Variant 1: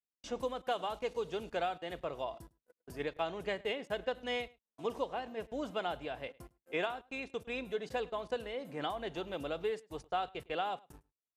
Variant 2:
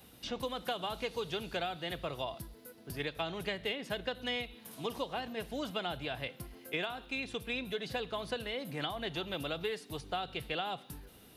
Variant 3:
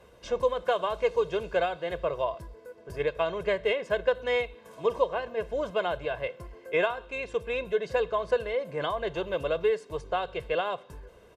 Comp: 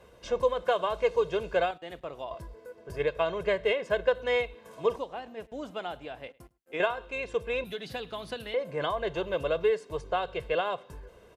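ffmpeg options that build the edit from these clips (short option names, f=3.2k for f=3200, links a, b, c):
-filter_complex "[0:a]asplit=2[a][b];[2:a]asplit=4[c][d][e][f];[c]atrim=end=1.712[g];[a]atrim=start=1.708:end=2.312[h];[d]atrim=start=2.308:end=4.962[i];[b]atrim=start=4.958:end=6.802[j];[e]atrim=start=6.798:end=7.642[k];[1:a]atrim=start=7.638:end=8.542[l];[f]atrim=start=8.538[m];[g][h]acrossfade=d=0.004:c1=hsin:c2=hsin[n];[n][i]acrossfade=d=0.004:c1=hsin:c2=hsin[o];[o][j]acrossfade=d=0.004:c1=hsin:c2=hsin[p];[p][k]acrossfade=d=0.004:c1=hsin:c2=hsin[q];[q][l]acrossfade=d=0.004:c1=hsin:c2=hsin[r];[r][m]acrossfade=d=0.004:c1=hsin:c2=hsin"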